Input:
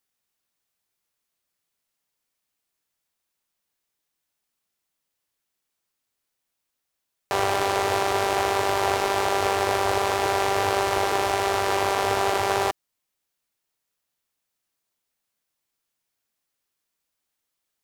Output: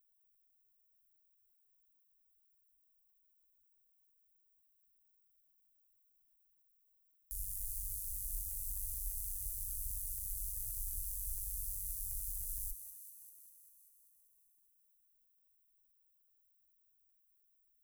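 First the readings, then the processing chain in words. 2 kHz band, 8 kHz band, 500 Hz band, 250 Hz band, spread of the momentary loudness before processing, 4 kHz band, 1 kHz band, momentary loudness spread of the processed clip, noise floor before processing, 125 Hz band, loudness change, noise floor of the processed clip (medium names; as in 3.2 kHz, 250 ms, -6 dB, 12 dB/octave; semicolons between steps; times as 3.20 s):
under -40 dB, -7.5 dB, under -40 dB, under -40 dB, 1 LU, -34.0 dB, under -40 dB, 9 LU, -81 dBFS, -15.0 dB, -16.5 dB, -75 dBFS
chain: inverse Chebyshev band-stop 200–2800 Hz, stop band 80 dB; peaking EQ 15 kHz -13.5 dB 1 oct; on a send: thinning echo 196 ms, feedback 71%, level -10 dB; on the sum: trim +15.5 dB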